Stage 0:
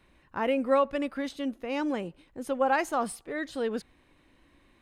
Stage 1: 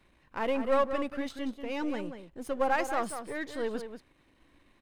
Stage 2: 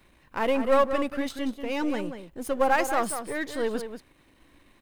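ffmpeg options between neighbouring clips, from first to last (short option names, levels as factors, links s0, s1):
-filter_complex "[0:a]aeval=exprs='if(lt(val(0),0),0.447*val(0),val(0))':c=same,asplit=2[s0][s1];[s1]adelay=186.6,volume=0.355,highshelf=f=4000:g=-4.2[s2];[s0][s2]amix=inputs=2:normalize=0"
-af "highshelf=f=9700:g=10,volume=1.78"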